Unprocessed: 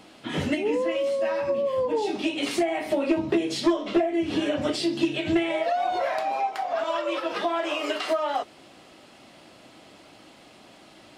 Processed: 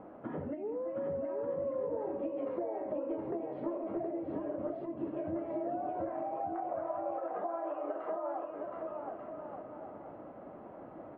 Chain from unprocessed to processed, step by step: low-pass 1.3 kHz 24 dB/octave; peaking EQ 540 Hz +6 dB 0.74 oct; compression 5:1, threshold -37 dBFS, peak gain reduction 19 dB; on a send: bouncing-ball echo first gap 720 ms, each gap 0.65×, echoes 5; on the sum: trim -1 dB

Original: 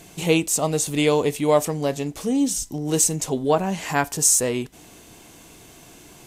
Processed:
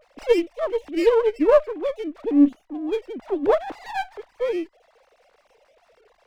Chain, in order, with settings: formants replaced by sine waves; sliding maximum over 9 samples

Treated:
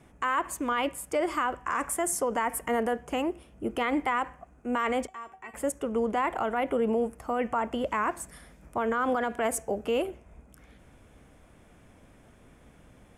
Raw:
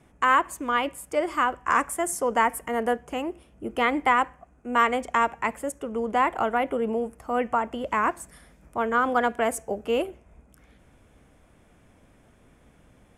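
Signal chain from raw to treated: peak limiter -20.5 dBFS, peak gain reduction 11.5 dB; 5.07–5.54 s: feedback comb 380 Hz, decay 0.2 s, harmonics all, mix 90%; trim +1.5 dB

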